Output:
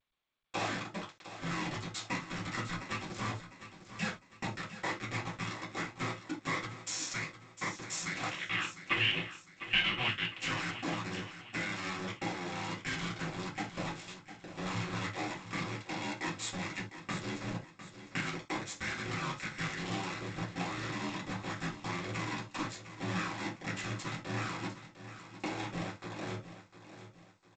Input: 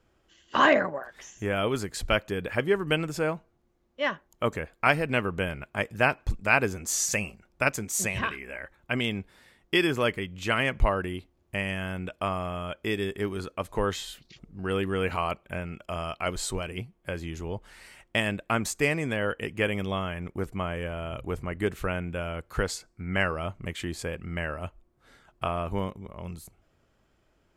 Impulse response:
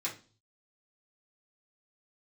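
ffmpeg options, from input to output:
-filter_complex "[0:a]highpass=97,acompressor=threshold=0.0178:ratio=12,afreqshift=-370,acrusher=bits=5:mix=0:aa=0.000001,asettb=1/sr,asplit=3[s0][s1][s2];[s0]atrim=end=8.294[s3];[s1]atrim=start=8.29:end=10.4,asetpts=PTS-STARTPTS,afade=t=in:d=0.004:c=qsin,afade=t=out:st=2.106:d=0.004:c=qsin,lowpass=f=2900:t=q:w=7[s4];[s2]atrim=start=10.396[s5];[s3][s4]acrossfade=d=0.004:c1=hsin:c2=qsin[s6];[s6][s5]acrossfade=d=0.004:c1=qsin:c2=hsin,aecho=1:1:704|1408|2112|2816:0.237|0.0925|0.0361|0.0141[s7];[1:a]atrim=start_sample=2205,atrim=end_sample=3969[s8];[s7][s8]afir=irnorm=-1:irlink=0" -ar 16000 -c:a g722

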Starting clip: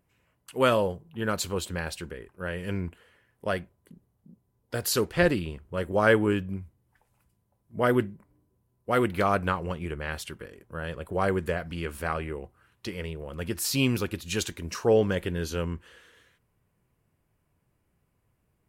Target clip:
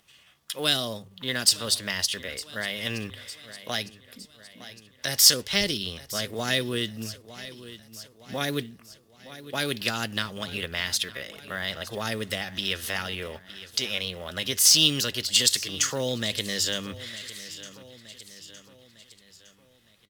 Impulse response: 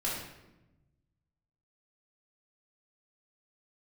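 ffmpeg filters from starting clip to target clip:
-filter_complex "[0:a]acrossover=split=330|3000[s0][s1][s2];[s1]acompressor=threshold=0.0178:ratio=10[s3];[s0][s3][s2]amix=inputs=3:normalize=0,equalizer=f=4000:t=o:w=2.5:g=14.5,bandreject=f=2000:w=16,asetrate=50951,aresample=44100,atempo=0.865537,bandreject=f=50:t=h:w=6,bandreject=f=100:t=h:w=6,aecho=1:1:847|1694|2541|3388:0.112|0.0527|0.0248|0.0116,atempo=0.93,tiltshelf=f=770:g=-3.5,asplit=2[s4][s5];[s5]acompressor=threshold=0.00891:ratio=6,volume=1[s6];[s4][s6]amix=inputs=2:normalize=0,acrusher=bits=6:mode=log:mix=0:aa=0.000001,volume=0.794"

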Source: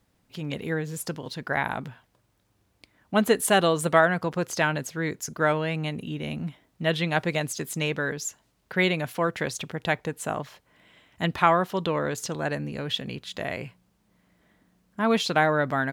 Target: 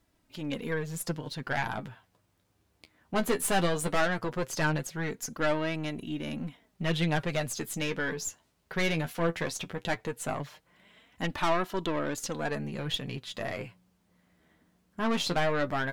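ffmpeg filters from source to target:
-af "aeval=exprs='(tanh(11.2*val(0)+0.4)-tanh(0.4))/11.2':c=same,flanger=delay=3:depth=9.6:regen=32:speed=0.17:shape=sinusoidal,volume=1.41"

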